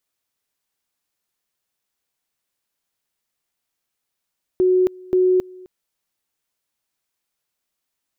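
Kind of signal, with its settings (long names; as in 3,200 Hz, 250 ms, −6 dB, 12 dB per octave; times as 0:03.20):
tone at two levels in turn 368 Hz −12.5 dBFS, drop 24.5 dB, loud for 0.27 s, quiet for 0.26 s, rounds 2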